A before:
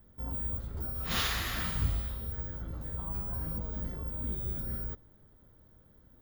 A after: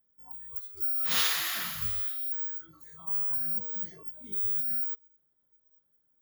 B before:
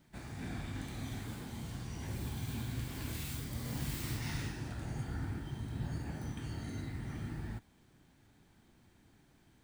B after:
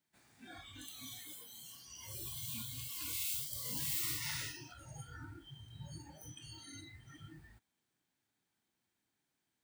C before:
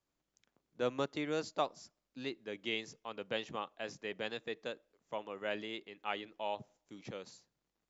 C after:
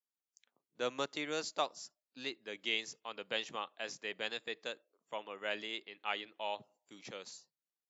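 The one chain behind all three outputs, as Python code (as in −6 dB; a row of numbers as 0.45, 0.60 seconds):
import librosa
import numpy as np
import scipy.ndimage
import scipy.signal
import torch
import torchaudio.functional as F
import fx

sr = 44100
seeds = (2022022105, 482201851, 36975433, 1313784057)

y = fx.noise_reduce_blind(x, sr, reduce_db=18)
y = fx.highpass(y, sr, hz=100.0, slope=6)
y = fx.tilt_eq(y, sr, slope=2.5)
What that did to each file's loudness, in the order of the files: +6.0, 0.0, +0.5 LU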